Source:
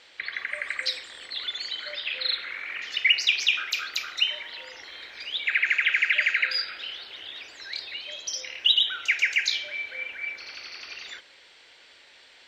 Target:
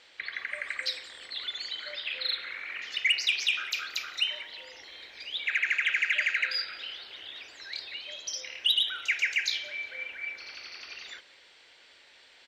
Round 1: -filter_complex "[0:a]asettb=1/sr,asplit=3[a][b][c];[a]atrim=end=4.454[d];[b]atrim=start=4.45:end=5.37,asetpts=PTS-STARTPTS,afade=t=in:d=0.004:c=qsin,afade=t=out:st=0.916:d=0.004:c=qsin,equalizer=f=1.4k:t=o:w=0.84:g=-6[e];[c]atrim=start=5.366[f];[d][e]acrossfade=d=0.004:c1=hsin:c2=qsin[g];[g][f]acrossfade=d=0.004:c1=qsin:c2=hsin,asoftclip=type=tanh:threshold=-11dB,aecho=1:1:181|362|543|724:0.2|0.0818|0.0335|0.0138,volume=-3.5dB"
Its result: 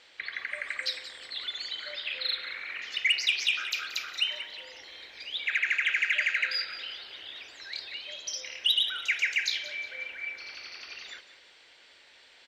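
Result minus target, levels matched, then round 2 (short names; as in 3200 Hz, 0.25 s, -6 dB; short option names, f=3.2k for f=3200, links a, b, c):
echo-to-direct +8 dB
-filter_complex "[0:a]asettb=1/sr,asplit=3[a][b][c];[a]atrim=end=4.454[d];[b]atrim=start=4.45:end=5.37,asetpts=PTS-STARTPTS,afade=t=in:d=0.004:c=qsin,afade=t=out:st=0.916:d=0.004:c=qsin,equalizer=f=1.4k:t=o:w=0.84:g=-6[e];[c]atrim=start=5.366[f];[d][e]acrossfade=d=0.004:c1=hsin:c2=qsin[g];[g][f]acrossfade=d=0.004:c1=qsin:c2=hsin,asoftclip=type=tanh:threshold=-11dB,aecho=1:1:181|362|543:0.0794|0.0326|0.0134,volume=-3.5dB"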